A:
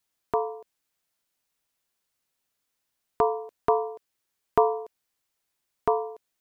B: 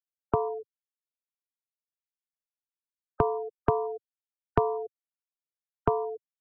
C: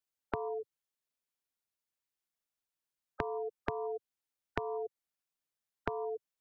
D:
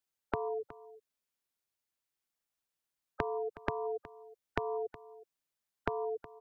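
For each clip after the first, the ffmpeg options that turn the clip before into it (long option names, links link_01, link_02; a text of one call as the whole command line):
ffmpeg -i in.wav -filter_complex "[0:a]afftfilt=real='re*gte(hypot(re,im),0.0398)':imag='im*gte(hypot(re,im),0.0398)':win_size=1024:overlap=0.75,acrossover=split=120[link_01][link_02];[link_02]acompressor=threshold=-32dB:ratio=4[link_03];[link_01][link_03]amix=inputs=2:normalize=0,equalizer=frequency=130:width=0.87:gain=14,volume=6dB" out.wav
ffmpeg -i in.wav -filter_complex "[0:a]asplit=2[link_01][link_02];[link_02]alimiter=limit=-18dB:level=0:latency=1:release=189,volume=0dB[link_03];[link_01][link_03]amix=inputs=2:normalize=0,acompressor=threshold=-30dB:ratio=12,volume=-2.5dB" out.wav
ffmpeg -i in.wav -af "aecho=1:1:367:0.133,volume=1.5dB" out.wav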